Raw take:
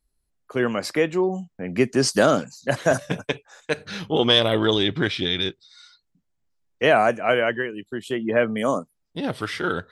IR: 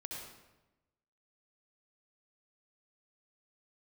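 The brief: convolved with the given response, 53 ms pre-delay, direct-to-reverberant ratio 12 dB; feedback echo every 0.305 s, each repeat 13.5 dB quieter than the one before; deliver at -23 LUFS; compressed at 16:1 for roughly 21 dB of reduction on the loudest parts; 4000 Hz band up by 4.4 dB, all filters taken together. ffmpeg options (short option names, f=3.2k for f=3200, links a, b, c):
-filter_complex "[0:a]equalizer=f=4k:t=o:g=5.5,acompressor=threshold=-30dB:ratio=16,aecho=1:1:305|610:0.211|0.0444,asplit=2[a][b];[1:a]atrim=start_sample=2205,adelay=53[c];[b][c]afir=irnorm=-1:irlink=0,volume=-10.5dB[d];[a][d]amix=inputs=2:normalize=0,volume=12dB"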